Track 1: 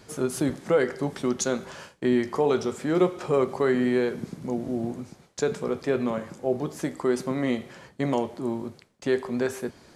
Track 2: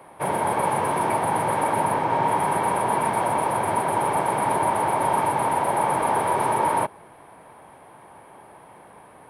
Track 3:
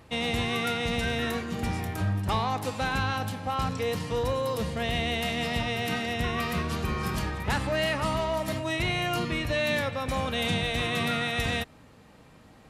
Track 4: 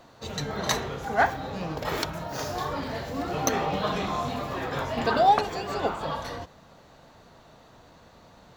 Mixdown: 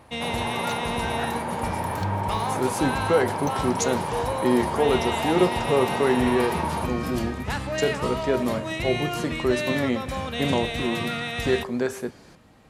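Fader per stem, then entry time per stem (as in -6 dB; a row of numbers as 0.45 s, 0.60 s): +1.0 dB, -7.5 dB, -1.0 dB, -13.0 dB; 2.40 s, 0.00 s, 0.00 s, 0.00 s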